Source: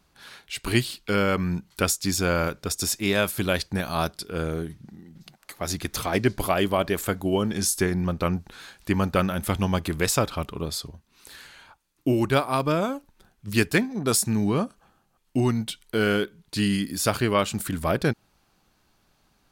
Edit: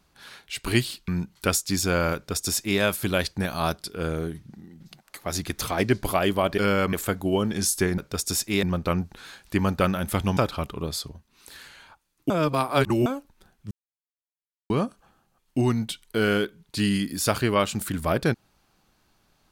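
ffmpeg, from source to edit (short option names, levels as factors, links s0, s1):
-filter_complex "[0:a]asplit=11[s0][s1][s2][s3][s4][s5][s6][s7][s8][s9][s10];[s0]atrim=end=1.082[s11];[s1]atrim=start=1.428:end=6.932[s12];[s2]atrim=start=1.078:end=1.432[s13];[s3]atrim=start=6.928:end=7.982[s14];[s4]atrim=start=2.498:end=3.152[s15];[s5]atrim=start=7.978:end=9.722[s16];[s6]atrim=start=10.158:end=12.092[s17];[s7]atrim=start=12.088:end=12.852,asetpts=PTS-STARTPTS,areverse[s18];[s8]atrim=start=12.848:end=13.5,asetpts=PTS-STARTPTS,afade=t=out:st=0.648:d=0.004:c=hsin[s19];[s9]atrim=start=13.5:end=14.49,asetpts=PTS-STARTPTS,volume=0[s20];[s10]atrim=start=14.49,asetpts=PTS-STARTPTS,afade=t=in:d=0.004:c=hsin[s21];[s11][s12]acrossfade=d=0.004:c1=hsin:c2=hsin[s22];[s22][s13]acrossfade=d=0.004:c1=hsin:c2=hsin[s23];[s23][s14]acrossfade=d=0.004:c1=hsin:c2=hsin[s24];[s24][s15]acrossfade=d=0.004:c1=hsin:c2=hsin[s25];[s25][s16]acrossfade=d=0.004:c1=hsin:c2=hsin[s26];[s26][s17]acrossfade=d=0.004:c1=hsin:c2=hsin[s27];[s27][s18]acrossfade=d=0.004:c1=hsin:c2=hsin[s28];[s19][s20][s21]concat=n=3:v=0:a=1[s29];[s28][s29]acrossfade=d=0.004:c1=hsin:c2=hsin"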